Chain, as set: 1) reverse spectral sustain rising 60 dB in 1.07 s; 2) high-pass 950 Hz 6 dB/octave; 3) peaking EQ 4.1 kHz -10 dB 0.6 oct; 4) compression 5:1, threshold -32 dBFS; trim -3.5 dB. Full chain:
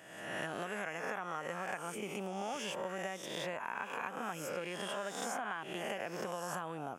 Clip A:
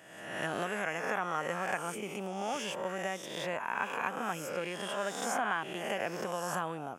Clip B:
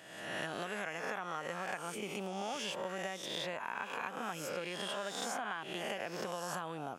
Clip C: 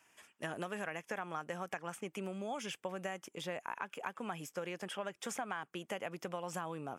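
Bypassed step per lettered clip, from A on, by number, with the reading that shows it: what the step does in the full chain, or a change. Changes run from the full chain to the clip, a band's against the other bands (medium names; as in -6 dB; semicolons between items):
4, mean gain reduction 4.0 dB; 3, 4 kHz band +4.0 dB; 1, 125 Hz band +3.0 dB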